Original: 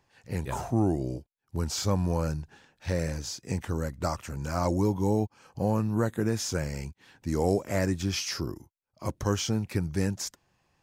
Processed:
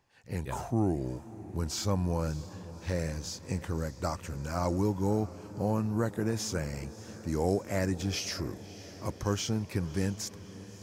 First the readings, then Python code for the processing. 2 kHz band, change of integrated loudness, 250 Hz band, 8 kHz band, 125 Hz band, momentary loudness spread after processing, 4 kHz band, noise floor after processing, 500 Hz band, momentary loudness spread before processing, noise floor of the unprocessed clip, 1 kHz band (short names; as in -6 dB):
-3.0 dB, -3.0 dB, -3.0 dB, -3.0 dB, -3.0 dB, 10 LU, -3.0 dB, -49 dBFS, -3.0 dB, 11 LU, -76 dBFS, -3.0 dB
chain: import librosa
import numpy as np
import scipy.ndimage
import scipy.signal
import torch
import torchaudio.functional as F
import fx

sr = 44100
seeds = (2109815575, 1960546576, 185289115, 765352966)

y = fx.echo_diffused(x, sr, ms=613, feedback_pct=63, wet_db=-16.0)
y = y * librosa.db_to_amplitude(-3.0)